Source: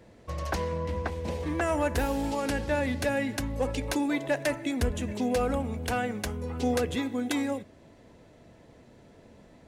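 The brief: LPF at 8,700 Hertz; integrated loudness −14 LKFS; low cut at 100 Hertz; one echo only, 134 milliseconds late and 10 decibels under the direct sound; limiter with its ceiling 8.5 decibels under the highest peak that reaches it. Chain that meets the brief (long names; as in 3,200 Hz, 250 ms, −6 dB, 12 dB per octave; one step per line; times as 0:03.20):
high-pass filter 100 Hz
low-pass filter 8,700 Hz
brickwall limiter −24 dBFS
single-tap delay 134 ms −10 dB
level +19 dB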